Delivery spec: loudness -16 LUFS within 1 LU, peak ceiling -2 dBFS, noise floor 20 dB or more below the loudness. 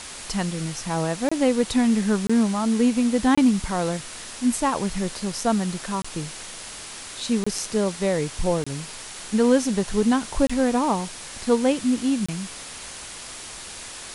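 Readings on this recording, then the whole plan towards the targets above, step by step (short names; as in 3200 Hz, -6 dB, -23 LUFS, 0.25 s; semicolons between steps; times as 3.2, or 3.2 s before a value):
dropouts 8; longest dropout 25 ms; noise floor -38 dBFS; noise floor target -44 dBFS; loudness -23.5 LUFS; peak -6.5 dBFS; loudness target -16.0 LUFS
-> interpolate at 1.29/2.27/3.35/6.02/7.44/8.64/10.47/12.26, 25 ms; noise print and reduce 6 dB; gain +7.5 dB; limiter -2 dBFS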